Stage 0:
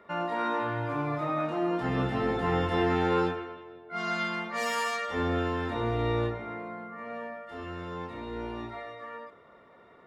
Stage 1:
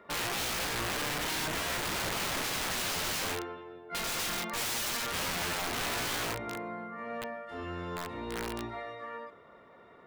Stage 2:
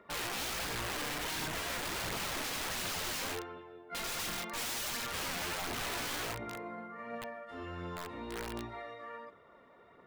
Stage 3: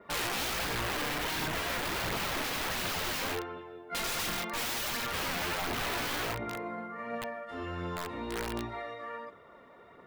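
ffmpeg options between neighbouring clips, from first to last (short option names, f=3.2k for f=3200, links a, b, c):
-af "aeval=exprs='(mod(26.6*val(0)+1,2)-1)/26.6':c=same"
-af "aphaser=in_gain=1:out_gain=1:delay=4.3:decay=0.3:speed=1.4:type=triangular,volume=-4.5dB"
-af "adynamicequalizer=threshold=0.00224:dfrequency=8000:dqfactor=0.71:tfrequency=8000:tqfactor=0.71:attack=5:release=100:ratio=0.375:range=3:mode=cutabove:tftype=bell,volume=5dB"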